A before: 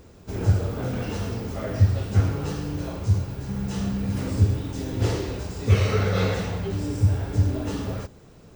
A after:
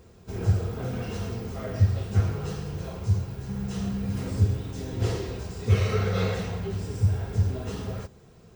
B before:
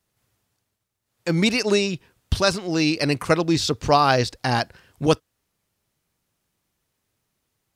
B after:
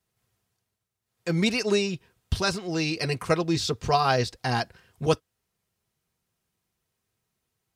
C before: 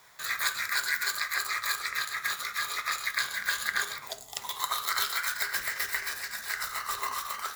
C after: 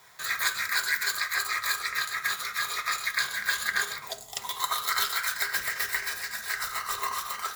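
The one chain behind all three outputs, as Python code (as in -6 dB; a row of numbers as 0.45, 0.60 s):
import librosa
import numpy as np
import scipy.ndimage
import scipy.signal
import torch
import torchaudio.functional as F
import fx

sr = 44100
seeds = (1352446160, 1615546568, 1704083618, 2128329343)

y = fx.notch_comb(x, sr, f0_hz=290.0)
y = librosa.util.normalize(y) * 10.0 ** (-9 / 20.0)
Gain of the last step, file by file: -2.5, -3.5, +3.0 dB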